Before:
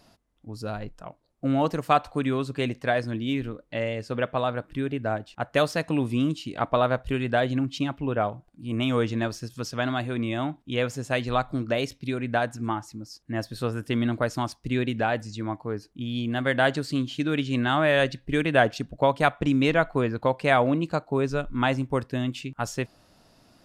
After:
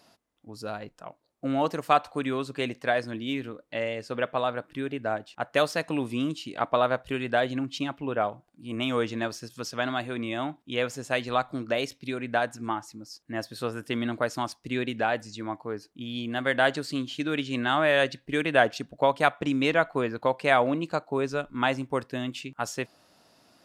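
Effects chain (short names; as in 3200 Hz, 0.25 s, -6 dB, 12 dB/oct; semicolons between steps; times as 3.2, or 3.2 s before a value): HPF 320 Hz 6 dB/oct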